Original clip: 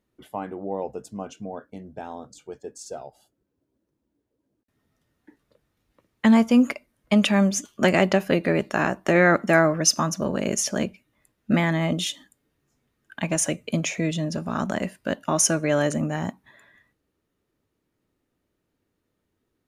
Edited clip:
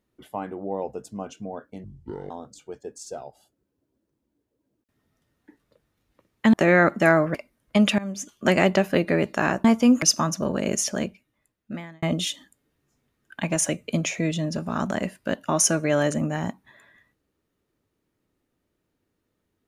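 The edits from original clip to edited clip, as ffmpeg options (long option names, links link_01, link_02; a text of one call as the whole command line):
ffmpeg -i in.wav -filter_complex "[0:a]asplit=9[link_01][link_02][link_03][link_04][link_05][link_06][link_07][link_08][link_09];[link_01]atrim=end=1.844[link_10];[link_02]atrim=start=1.84:end=2.1,asetpts=PTS-STARTPTS,asetrate=24696,aresample=44100[link_11];[link_03]atrim=start=2.096:end=6.332[link_12];[link_04]atrim=start=9.008:end=9.822[link_13];[link_05]atrim=start=6.708:end=7.35,asetpts=PTS-STARTPTS,afade=type=out:start_time=0.638:duration=0.004:curve=hsin:silence=0.1[link_14];[link_06]atrim=start=7.35:end=9.012,asetpts=PTS-STARTPTS,afade=type=in:duration=0.56:silence=0.1[link_15];[link_07]atrim=start=6.328:end=6.712[link_16];[link_08]atrim=start=9.818:end=11.82,asetpts=PTS-STARTPTS,afade=type=out:start_time=0.742:duration=1.26[link_17];[link_09]atrim=start=11.82,asetpts=PTS-STARTPTS,afade=type=in:duration=0.004:curve=hsin[link_18];[link_10][link_11]acrossfade=duration=0.004:curve1=hsin:curve2=hsin[link_19];[link_19][link_12]acrossfade=duration=0.004:curve1=hsin:curve2=hsin[link_20];[link_20][link_13]acrossfade=duration=0.004:curve1=hsin:curve2=hsin[link_21];[link_14][link_15]concat=n=2:v=0:a=1[link_22];[link_21][link_22]acrossfade=duration=0.004:curve1=hsin:curve2=hsin[link_23];[link_23][link_16]acrossfade=duration=0.004:curve1=hsin:curve2=hsin[link_24];[link_17][link_18]concat=n=2:v=0:a=1[link_25];[link_24][link_25]acrossfade=duration=0.004:curve1=hsin:curve2=hsin" out.wav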